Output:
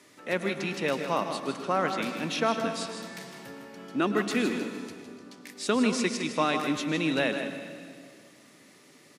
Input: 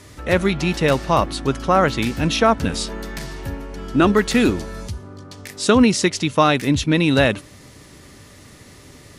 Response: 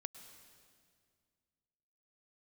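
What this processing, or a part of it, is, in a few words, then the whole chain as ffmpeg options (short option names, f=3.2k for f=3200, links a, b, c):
PA in a hall: -filter_complex "[0:a]highpass=f=180:w=0.5412,highpass=f=180:w=1.3066,equalizer=f=2.3k:t=o:w=0.77:g=3,aecho=1:1:158:0.355[a];[1:a]atrim=start_sample=2205[b];[a][b]afir=irnorm=-1:irlink=0,volume=-7dB"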